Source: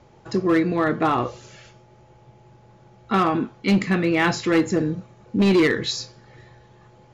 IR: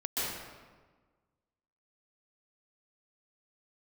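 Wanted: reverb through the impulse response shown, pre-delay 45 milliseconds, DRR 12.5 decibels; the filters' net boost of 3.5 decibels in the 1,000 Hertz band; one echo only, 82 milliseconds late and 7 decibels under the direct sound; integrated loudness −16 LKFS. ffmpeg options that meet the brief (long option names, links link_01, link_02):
-filter_complex "[0:a]equalizer=frequency=1000:width_type=o:gain=4.5,aecho=1:1:82:0.447,asplit=2[link_01][link_02];[1:a]atrim=start_sample=2205,adelay=45[link_03];[link_02][link_03]afir=irnorm=-1:irlink=0,volume=-19.5dB[link_04];[link_01][link_04]amix=inputs=2:normalize=0,volume=3.5dB"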